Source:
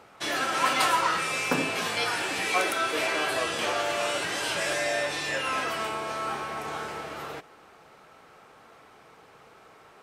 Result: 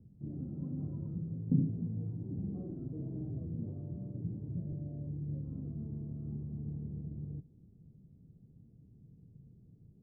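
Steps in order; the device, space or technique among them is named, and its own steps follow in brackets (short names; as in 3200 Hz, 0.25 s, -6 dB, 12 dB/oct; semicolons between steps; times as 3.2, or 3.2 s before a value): 2.19–3.31 flutter echo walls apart 7.7 m, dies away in 0.69 s; the neighbour's flat through the wall (LPF 190 Hz 24 dB/oct; bell 120 Hz +3.5 dB 0.59 oct); gain +9 dB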